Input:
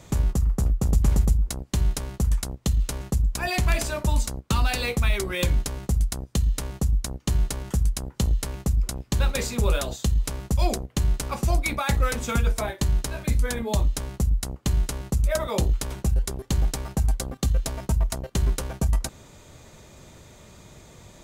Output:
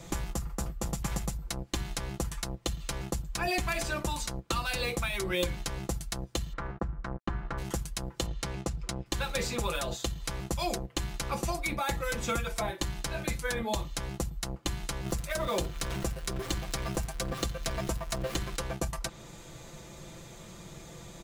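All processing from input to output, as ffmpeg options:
ffmpeg -i in.wav -filter_complex "[0:a]asettb=1/sr,asplit=3[link_01][link_02][link_03];[link_01]atrim=end=6.534[link_04];[link_02]atrim=start=6.53:end=7.58,asetpts=PTS-STARTPTS,afade=type=in:duration=0.004:curve=qsin,afade=type=out:start_time=1.046:duration=0.004:curve=qsin,aeval=exprs='sgn(val(0))*max(abs(val(0))-0.00631,0)':channel_layout=same,acompressor=threshold=-25dB:ratio=1.5:attack=3.2:release=140:knee=1:detection=peak,lowpass=frequency=1400:width_type=q:width=2.1[link_05];[link_03]atrim=start=7.576[link_06];[link_04][link_05]acrossfade=duration=0.004:curve1=hsin:curve2=qsin[link_07];[link_07][link_06]acrossfade=duration=0.004:curve1=qsin:curve2=hsin,asettb=1/sr,asplit=3[link_08][link_09][link_10];[link_08]atrim=end=8.264[link_11];[link_09]atrim=start=8.26:end=9.06,asetpts=PTS-STARTPTS,afade=type=in:duration=0.004:curve=qsin,afade=type=out:start_time=0.796:duration=0.004:curve=qsin,highpass=55,adynamicsmooth=sensitivity=7.5:basefreq=5000[link_12];[link_10]atrim=start=9.056[link_13];[link_11][link_12]acrossfade=duration=0.004:curve1=hsin:curve2=qsin[link_14];[link_14][link_13]acrossfade=duration=0.004:curve1=qsin:curve2=hsin,asettb=1/sr,asplit=3[link_15][link_16][link_17];[link_15]atrim=end=15.054[link_18];[link_16]atrim=start=15.05:end=18.56,asetpts=PTS-STARTPTS,afade=type=in:duration=0.004:curve=qsin,afade=type=out:start_time=3.506:duration=0.004:curve=qsin,aeval=exprs='val(0)+0.5*0.02*sgn(val(0))':channel_layout=same,bandreject=frequency=850:width=14[link_19];[link_17]atrim=start=18.556[link_20];[link_18][link_19]acrossfade=duration=0.004:curve1=hsin:curve2=qsin[link_21];[link_21][link_20]acrossfade=duration=0.004:curve1=qsin:curve2=hsin,acrossover=split=650|5200[link_22][link_23][link_24];[link_22]acompressor=threshold=-30dB:ratio=4[link_25];[link_23]acompressor=threshold=-34dB:ratio=4[link_26];[link_24]acompressor=threshold=-43dB:ratio=4[link_27];[link_25][link_26][link_27]amix=inputs=3:normalize=0,aecho=1:1:5.9:0.64,afftfilt=real='re*lt(hypot(re,im),0.398)':imag='im*lt(hypot(re,im),0.398)':win_size=1024:overlap=0.75" out.wav

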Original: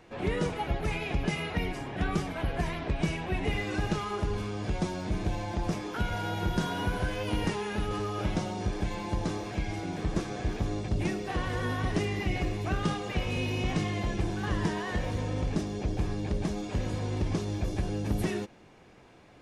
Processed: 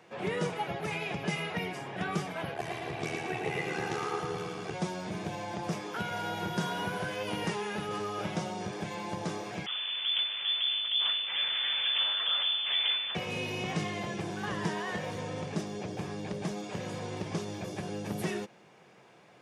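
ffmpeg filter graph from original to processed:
ffmpeg -i in.wav -filter_complex "[0:a]asettb=1/sr,asplit=3[link_01][link_02][link_03];[link_01]atrim=end=2.544[link_04];[link_02]atrim=start=2.54:end=4.74,asetpts=PTS-STARTPTS,afade=type=in:duration=0.004:curve=qsin,afade=type=out:start_time=2.196:duration=0.004:curve=qsin,aecho=1:1:2.6:0.79,atrim=end_sample=97020,tremolo=f=77:d=0.947,aecho=1:1:112|224|336|448|560|672|784|896:0.631|0.353|0.198|0.111|0.0621|0.0347|0.0195|0.0109,atrim=end_sample=97020[link_05];[link_03]atrim=start=4.736[link_06];[link_04][link_05]acrossfade=duration=0.004:curve1=hsin:curve2=qsin[link_07];[link_07][link_06]acrossfade=duration=0.004:curve1=qsin:curve2=hsin,asettb=1/sr,asplit=3[link_08][link_09][link_10];[link_08]atrim=end=9.664[link_11];[link_09]atrim=start=9.66:end=13.15,asetpts=PTS-STARTPTS,afade=type=in:duration=0.004:curve=qsin,afade=type=out:start_time=3.486:duration=0.004:curve=qsin,aeval=exprs='abs(val(0))':channel_layout=same,lowpass=frequency=3000:width_type=q:width=0.5098,lowpass=frequency=3000:width_type=q:width=0.6013,lowpass=frequency=3000:width_type=q:width=0.9,lowpass=frequency=3000:width_type=q:width=2.563,afreqshift=-3500[link_12];[link_10]atrim=start=13.146[link_13];[link_11][link_12]acrossfade=duration=0.004:curve1=hsin:curve2=qsin[link_14];[link_14][link_13]acrossfade=duration=0.004:curve1=qsin:curve2=hsin,highpass=frequency=140:width=0.5412,highpass=frequency=140:width=1.3066,equalizer=frequency=270:width_type=o:width=0.57:gain=-9,bandreject=frequency=4100:width=21" out.wav

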